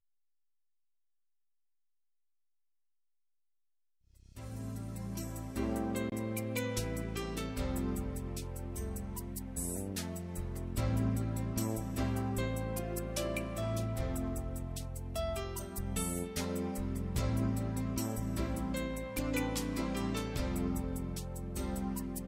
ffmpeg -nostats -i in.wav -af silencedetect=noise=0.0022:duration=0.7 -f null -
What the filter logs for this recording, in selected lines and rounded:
silence_start: 0.00
silence_end: 4.17 | silence_duration: 4.17